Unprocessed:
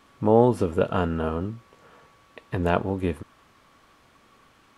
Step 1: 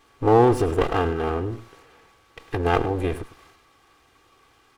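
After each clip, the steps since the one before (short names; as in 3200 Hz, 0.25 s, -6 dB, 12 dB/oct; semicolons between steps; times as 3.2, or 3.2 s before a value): minimum comb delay 2.5 ms; transient shaper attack +2 dB, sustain +7 dB; echo 0.103 s -15 dB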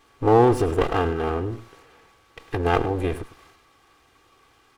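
nothing audible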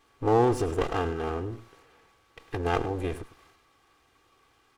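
dynamic EQ 6600 Hz, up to +6 dB, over -51 dBFS, Q 1.2; gain -6 dB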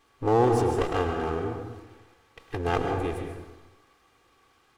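plate-style reverb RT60 1 s, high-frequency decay 0.5×, pre-delay 0.12 s, DRR 4 dB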